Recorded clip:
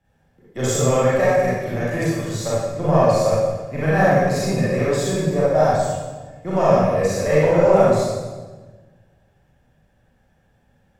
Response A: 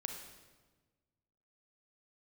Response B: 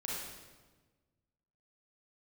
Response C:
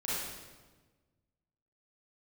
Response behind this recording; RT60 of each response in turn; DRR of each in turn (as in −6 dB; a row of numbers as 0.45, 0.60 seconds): C; 1.3, 1.3, 1.3 seconds; 3.5, −5.5, −9.5 decibels